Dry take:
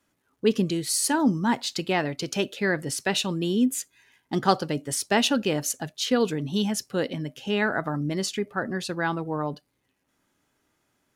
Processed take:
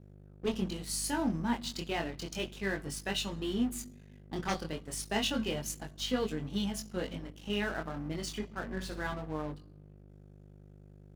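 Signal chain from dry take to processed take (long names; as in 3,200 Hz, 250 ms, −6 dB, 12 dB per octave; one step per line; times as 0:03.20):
dynamic equaliser 3,000 Hz, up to +5 dB, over −44 dBFS, Q 4.7
tuned comb filter 220 Hz, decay 0.41 s, harmonics odd, mix 60%
harmonic generator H 7 −7 dB, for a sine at −4.5 dBFS
chorus effect 0.32 Hz, delay 19.5 ms, depth 5.6 ms
mains hum 50 Hz, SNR 10 dB
dead-zone distortion −42.5 dBFS
0:08.65–0:09.14: flutter between parallel walls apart 10.2 metres, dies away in 0.37 s
on a send at −23.5 dB: convolution reverb RT60 1.1 s, pre-delay 3 ms
on the sum: level −4 dB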